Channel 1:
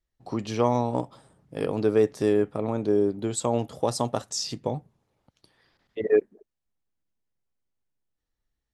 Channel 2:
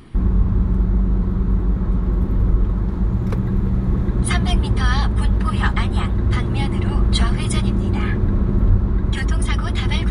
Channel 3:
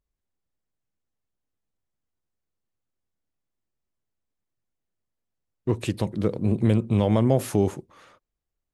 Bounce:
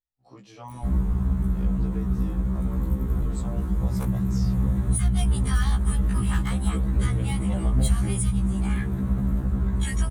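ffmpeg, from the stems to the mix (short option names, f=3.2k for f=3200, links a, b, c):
-filter_complex "[0:a]volume=-12dB[a];[1:a]asoftclip=type=hard:threshold=-10dB,aexciter=amount=6.2:drive=6:freq=7k,adelay=700,volume=-2.5dB[b];[2:a]adelay=500,volume=-5dB[c];[a][b][c]amix=inputs=3:normalize=0,equalizer=f=380:w=1.5:g=-3,acrossover=split=190[d][e];[e]acompressor=threshold=-30dB:ratio=3[f];[d][f]amix=inputs=2:normalize=0,afftfilt=real='re*1.73*eq(mod(b,3),0)':imag='im*1.73*eq(mod(b,3),0)':win_size=2048:overlap=0.75"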